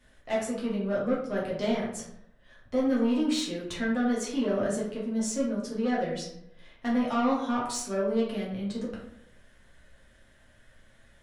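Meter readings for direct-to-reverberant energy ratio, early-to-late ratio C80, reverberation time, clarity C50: -6.0 dB, 7.5 dB, 0.75 s, 3.5 dB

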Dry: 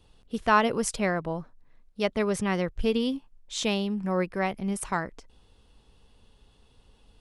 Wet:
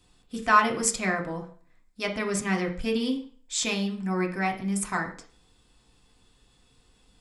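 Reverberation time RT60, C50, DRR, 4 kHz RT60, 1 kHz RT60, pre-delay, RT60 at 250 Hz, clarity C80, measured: 0.45 s, 10.5 dB, 2.0 dB, 0.40 s, 0.45 s, 3 ms, 0.40 s, 15.0 dB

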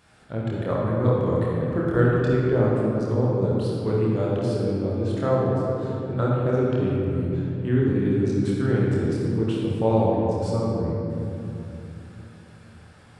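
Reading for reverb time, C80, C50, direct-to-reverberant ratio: 2.9 s, -1.0 dB, -3.0 dB, -5.5 dB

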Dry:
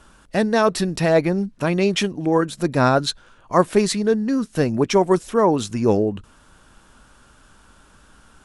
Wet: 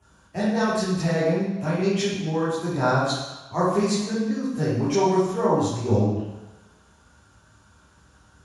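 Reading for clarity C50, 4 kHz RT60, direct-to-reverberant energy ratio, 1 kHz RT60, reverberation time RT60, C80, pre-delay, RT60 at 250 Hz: -1.0 dB, 1.1 s, -10.5 dB, 1.2 s, 1.1 s, 2.5 dB, 3 ms, 1.0 s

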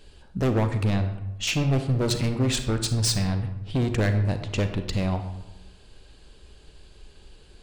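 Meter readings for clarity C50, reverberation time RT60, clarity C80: 8.5 dB, 1.0 s, 11.0 dB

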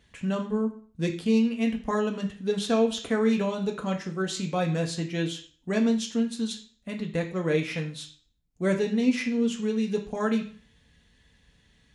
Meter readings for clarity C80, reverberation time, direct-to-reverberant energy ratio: 14.5 dB, 0.50 s, 2.0 dB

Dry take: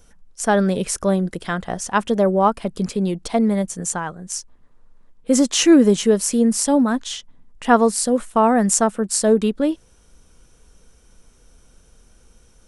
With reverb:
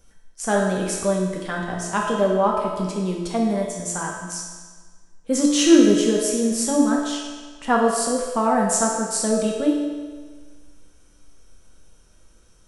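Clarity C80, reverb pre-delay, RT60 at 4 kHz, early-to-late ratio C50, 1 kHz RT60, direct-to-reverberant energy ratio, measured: 3.5 dB, 3 ms, 1.4 s, 2.0 dB, 1.5 s, -2.0 dB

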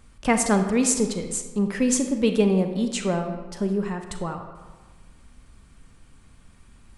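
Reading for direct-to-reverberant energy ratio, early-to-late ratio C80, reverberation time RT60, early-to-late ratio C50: 6.0 dB, 8.5 dB, 1.4 s, 7.0 dB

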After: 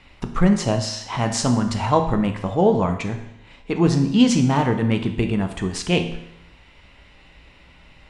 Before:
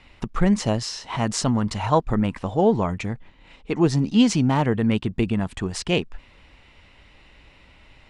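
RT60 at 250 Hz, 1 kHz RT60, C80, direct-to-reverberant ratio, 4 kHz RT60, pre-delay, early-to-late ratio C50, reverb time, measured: 0.80 s, 0.75 s, 11.5 dB, 5.0 dB, 0.75 s, 8 ms, 9.0 dB, 0.80 s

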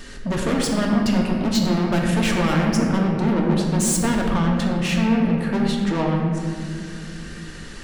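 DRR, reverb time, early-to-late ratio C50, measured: -1.0 dB, 2.3 s, 2.0 dB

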